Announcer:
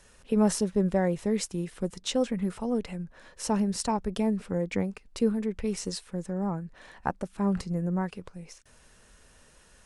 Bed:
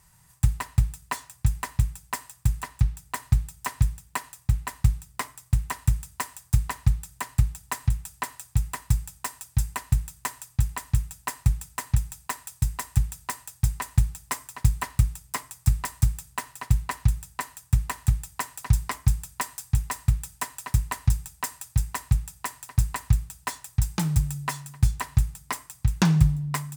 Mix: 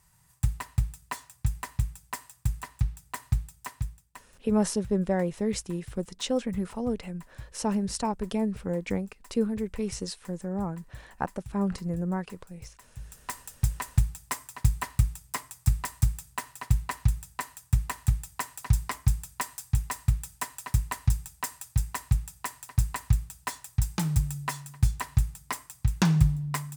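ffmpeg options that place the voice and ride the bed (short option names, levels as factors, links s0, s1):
-filter_complex "[0:a]adelay=4150,volume=0.891[s0];[1:a]volume=5.62,afade=t=out:st=3.31:d=0.96:silence=0.133352,afade=t=in:st=12.98:d=0.4:silence=0.1[s1];[s0][s1]amix=inputs=2:normalize=0"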